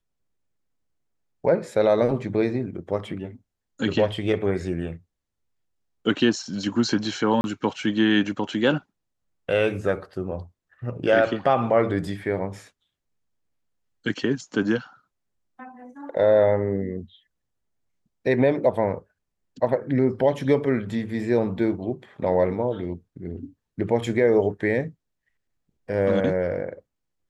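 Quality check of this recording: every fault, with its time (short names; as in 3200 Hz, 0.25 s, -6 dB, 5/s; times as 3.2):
7.41–7.44 gap 31 ms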